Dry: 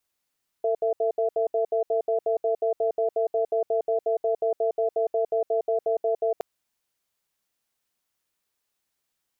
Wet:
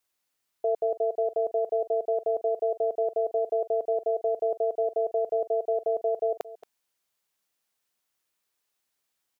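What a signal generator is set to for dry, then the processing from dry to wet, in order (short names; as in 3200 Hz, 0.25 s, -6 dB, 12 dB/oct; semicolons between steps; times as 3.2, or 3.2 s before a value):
cadence 451 Hz, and 669 Hz, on 0.11 s, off 0.07 s, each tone -23.5 dBFS 5.77 s
low shelf 220 Hz -6 dB; echo 0.225 s -17.5 dB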